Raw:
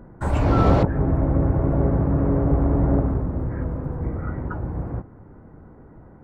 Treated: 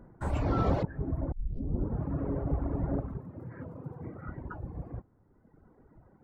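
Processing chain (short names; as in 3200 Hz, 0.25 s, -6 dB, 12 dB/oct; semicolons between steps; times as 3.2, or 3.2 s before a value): reverb removal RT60 1.8 s; 1.32 tape start 0.72 s; 3.17–4.28 HPF 100 Hz 24 dB/oct; gain -8.5 dB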